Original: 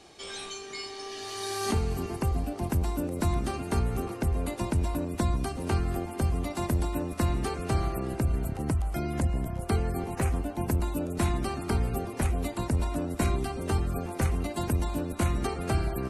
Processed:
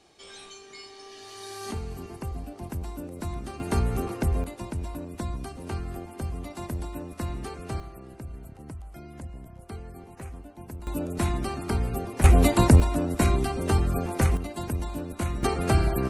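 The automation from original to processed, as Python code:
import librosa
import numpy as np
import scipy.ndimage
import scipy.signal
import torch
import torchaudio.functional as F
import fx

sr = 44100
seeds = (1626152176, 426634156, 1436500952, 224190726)

y = fx.gain(x, sr, db=fx.steps((0.0, -6.5), (3.6, 2.5), (4.44, -5.5), (7.8, -12.5), (10.87, 0.5), (12.24, 12.0), (12.8, 4.5), (14.37, -2.5), (15.43, 5.5)))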